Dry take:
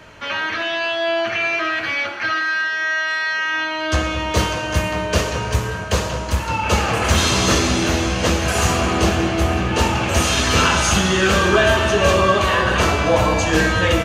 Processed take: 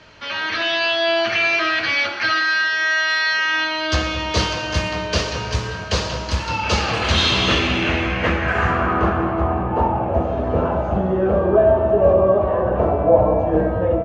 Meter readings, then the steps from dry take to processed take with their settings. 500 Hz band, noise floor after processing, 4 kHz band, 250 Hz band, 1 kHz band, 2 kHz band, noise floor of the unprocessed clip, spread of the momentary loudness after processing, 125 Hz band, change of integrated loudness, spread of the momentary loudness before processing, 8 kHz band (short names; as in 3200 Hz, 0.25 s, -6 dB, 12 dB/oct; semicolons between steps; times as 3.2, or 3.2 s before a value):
+2.0 dB, -27 dBFS, -0.5 dB, -2.0 dB, -1.5 dB, -1.0 dB, -26 dBFS, 7 LU, -2.5 dB, -0.5 dB, 7 LU, -10.5 dB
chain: AGC gain up to 6 dB; low-pass sweep 4800 Hz -> 650 Hz, 6.79–10.3; gain -5 dB